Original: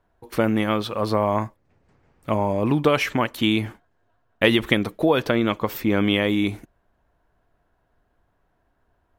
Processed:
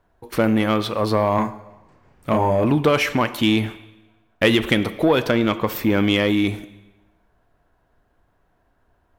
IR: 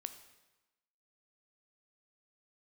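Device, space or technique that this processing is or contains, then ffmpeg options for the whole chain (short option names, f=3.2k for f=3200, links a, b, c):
saturated reverb return: -filter_complex "[0:a]asettb=1/sr,asplit=3[a][b][c];[a]atrim=end=1.354[d];[b]atrim=start=1.35:end=2.65,asetpts=PTS-STARTPTS,afade=t=in:d=0.004:c=qsin,afade=t=out:st=1.296:d=0.004:c=qsin,asplit=2[e][f];[f]adelay=32,volume=-3.5dB[g];[e][g]amix=inputs=2:normalize=0,atrim=end_sample=57330[h];[c]atrim=start=2.646[i];[d][h]acrossfade=d=0.004:c1=hsin:c2=qsin[j];[j][i]acrossfade=d=0.004:c1=qsin:c2=hsin,asplit=2[k][l];[1:a]atrim=start_sample=2205[m];[l][m]afir=irnorm=-1:irlink=0,asoftclip=type=tanh:threshold=-19dB,volume=6.5dB[n];[k][n]amix=inputs=2:normalize=0,volume=-4dB"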